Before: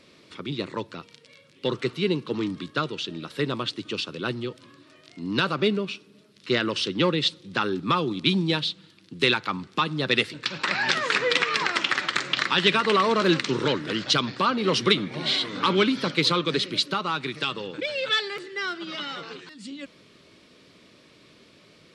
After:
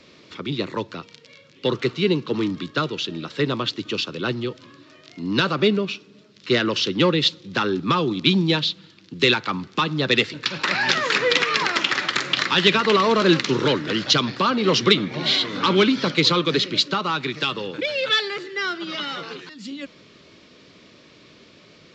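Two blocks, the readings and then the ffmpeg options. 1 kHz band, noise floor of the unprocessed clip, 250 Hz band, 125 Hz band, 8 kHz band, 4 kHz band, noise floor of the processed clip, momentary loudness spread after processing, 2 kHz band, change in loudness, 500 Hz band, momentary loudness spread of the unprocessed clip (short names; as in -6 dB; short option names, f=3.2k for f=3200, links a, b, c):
+2.5 dB, -55 dBFS, +4.5 dB, +4.5 dB, +4.0 dB, +4.0 dB, -51 dBFS, 12 LU, +3.0 dB, +4.0 dB, +4.5 dB, 12 LU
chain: -filter_complex "[0:a]acrossover=split=360|530|2700[a][b][c][d];[c]asoftclip=type=tanh:threshold=-20.5dB[e];[a][b][e][d]amix=inputs=4:normalize=0,aresample=16000,aresample=44100,volume=4.5dB"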